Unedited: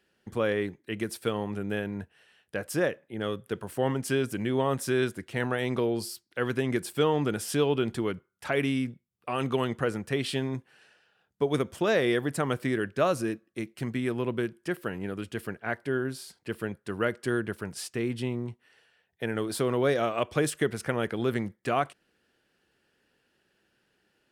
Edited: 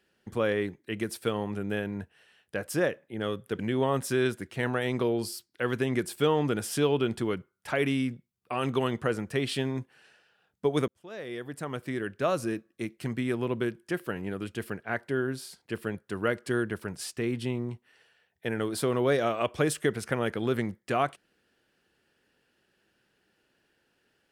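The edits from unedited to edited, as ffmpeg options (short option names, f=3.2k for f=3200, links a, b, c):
-filter_complex "[0:a]asplit=3[a][b][c];[a]atrim=end=3.592[d];[b]atrim=start=4.358:end=11.65,asetpts=PTS-STARTPTS,afade=t=out:st=7.288:d=0.004:c=hsin[e];[c]atrim=start=11.65,asetpts=PTS-STARTPTS,afade=t=in:d=1.81[f];[e][f]concat=n=2:v=0:a=1[g];[d][g]acrossfade=d=0.004:c1=hsin:c2=hsin"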